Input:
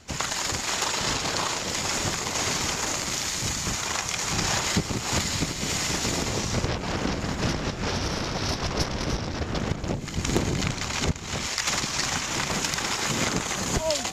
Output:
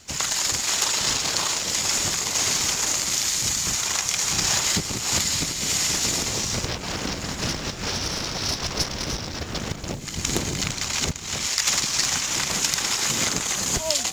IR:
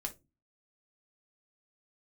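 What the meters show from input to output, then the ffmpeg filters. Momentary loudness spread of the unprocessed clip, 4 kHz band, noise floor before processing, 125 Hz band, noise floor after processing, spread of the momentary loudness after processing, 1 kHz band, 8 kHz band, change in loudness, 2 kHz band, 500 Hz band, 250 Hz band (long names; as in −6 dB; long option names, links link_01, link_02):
4 LU, +4.5 dB, −33 dBFS, −3.0 dB, −33 dBFS, 7 LU, −2.0 dB, +6.5 dB, +4.0 dB, +0.5 dB, −2.5 dB, −3.0 dB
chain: -af "highshelf=frequency=3000:gain=11.5,acrusher=bits=6:mode=log:mix=0:aa=0.000001,volume=-3dB"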